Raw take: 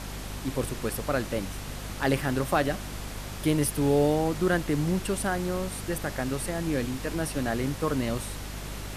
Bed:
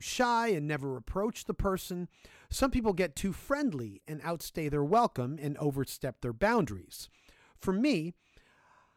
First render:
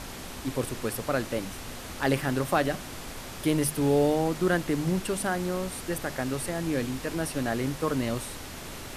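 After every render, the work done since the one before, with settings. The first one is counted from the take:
mains-hum notches 50/100/150/200 Hz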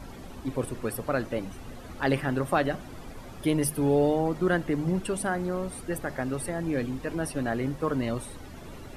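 broadband denoise 13 dB, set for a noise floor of −40 dBFS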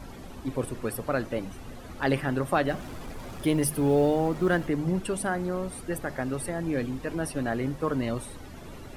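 0:02.68–0:04.68: mu-law and A-law mismatch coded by mu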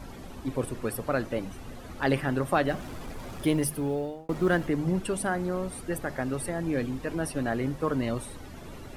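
0:03.48–0:04.29: fade out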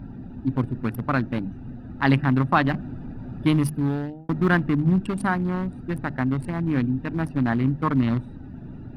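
adaptive Wiener filter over 41 samples
octave-band graphic EQ 125/250/500/1,000/2,000/4,000/8,000 Hz +9/+9/−9/+11/+5/+6/−5 dB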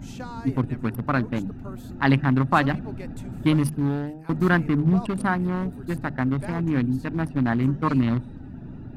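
mix in bed −11 dB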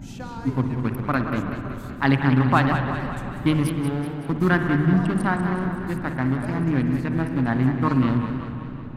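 spring reverb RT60 2.7 s, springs 54 ms, chirp 60 ms, DRR 6.5 dB
feedback echo with a swinging delay time 188 ms, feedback 57%, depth 131 cents, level −9 dB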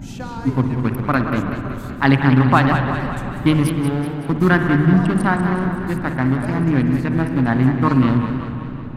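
level +5 dB
brickwall limiter −2 dBFS, peak gain reduction 1.5 dB

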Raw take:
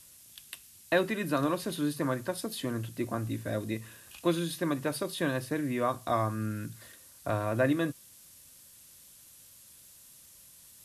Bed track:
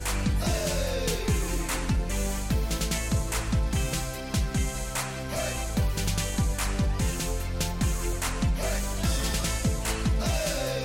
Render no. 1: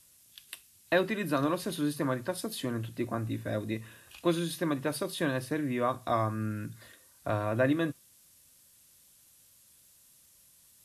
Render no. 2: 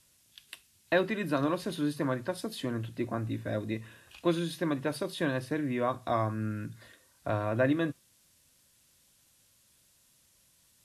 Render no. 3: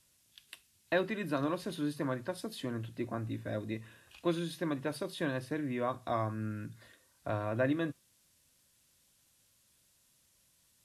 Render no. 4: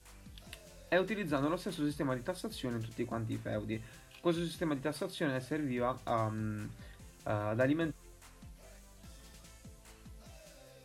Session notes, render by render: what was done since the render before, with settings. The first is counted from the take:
noise reduction from a noise print 6 dB
high-shelf EQ 9,200 Hz −11.5 dB; notch filter 1,200 Hz, Q 29
level −4 dB
mix in bed track −27.5 dB

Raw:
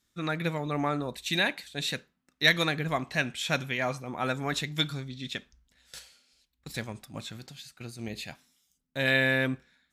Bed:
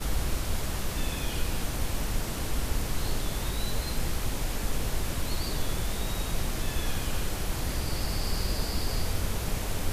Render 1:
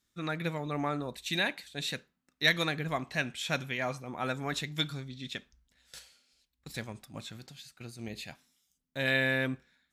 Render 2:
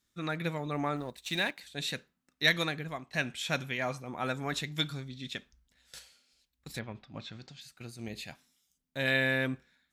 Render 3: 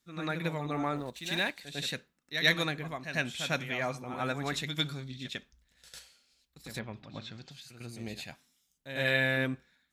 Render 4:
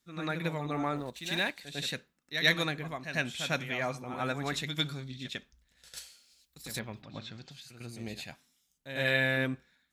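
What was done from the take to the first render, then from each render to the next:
level −3.5 dB
0:00.96–0:01.61: mu-law and A-law mismatch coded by A; 0:02.56–0:03.13: fade out, to −13 dB; 0:06.78–0:07.60: low-pass filter 3,300 Hz → 7,100 Hz 24 dB per octave
backwards echo 100 ms −9 dB
0:05.96–0:07.01: high-shelf EQ 3,500 Hz → 5,200 Hz +10 dB

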